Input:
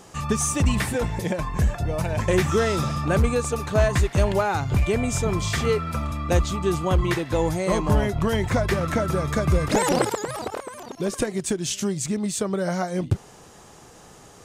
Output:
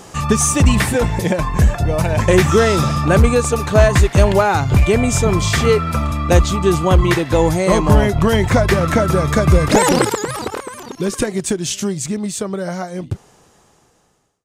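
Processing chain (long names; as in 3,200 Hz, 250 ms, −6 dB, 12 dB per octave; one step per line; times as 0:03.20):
fade-out on the ending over 3.98 s
0:09.90–0:11.24: parametric band 660 Hz −10 dB 0.46 octaves
level +8.5 dB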